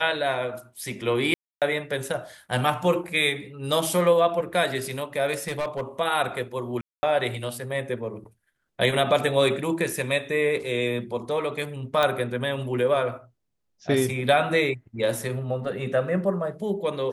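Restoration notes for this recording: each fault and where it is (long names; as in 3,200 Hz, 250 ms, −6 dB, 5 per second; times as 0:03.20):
0:01.34–0:01.62: drop-out 277 ms
0:05.33–0:05.81: clipping −23.5 dBFS
0:06.81–0:07.03: drop-out 220 ms
0:12.03: click −10 dBFS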